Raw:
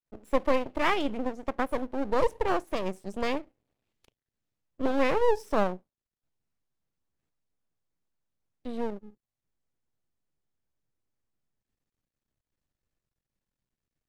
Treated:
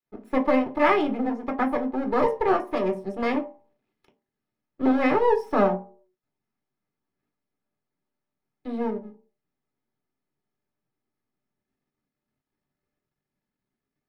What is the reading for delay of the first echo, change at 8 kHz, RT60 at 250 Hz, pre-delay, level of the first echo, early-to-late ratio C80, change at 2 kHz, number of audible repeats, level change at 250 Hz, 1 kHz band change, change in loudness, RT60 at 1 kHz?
no echo, no reading, 0.40 s, 3 ms, no echo, 18.5 dB, +3.5 dB, no echo, +7.5 dB, +5.5 dB, +5.0 dB, 0.45 s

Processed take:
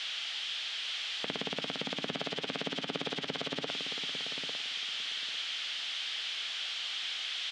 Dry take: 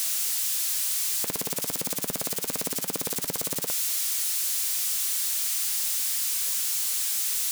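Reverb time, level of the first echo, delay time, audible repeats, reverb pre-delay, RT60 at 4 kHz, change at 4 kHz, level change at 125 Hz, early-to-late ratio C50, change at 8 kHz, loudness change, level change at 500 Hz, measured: no reverb, -9.0 dB, 850 ms, 2, no reverb, no reverb, +1.0 dB, -3.5 dB, no reverb, -23.5 dB, -9.5 dB, -2.0 dB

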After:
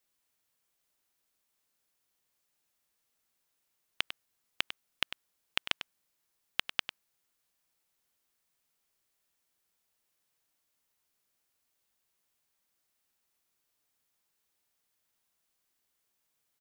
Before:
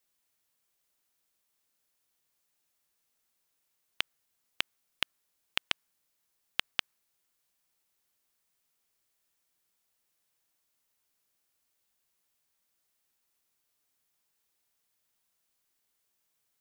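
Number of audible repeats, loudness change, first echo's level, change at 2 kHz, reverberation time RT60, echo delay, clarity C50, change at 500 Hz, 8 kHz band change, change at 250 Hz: 1, -0.5 dB, -11.5 dB, 0.0 dB, no reverb, 99 ms, no reverb, +0.5 dB, -1.5 dB, +0.5 dB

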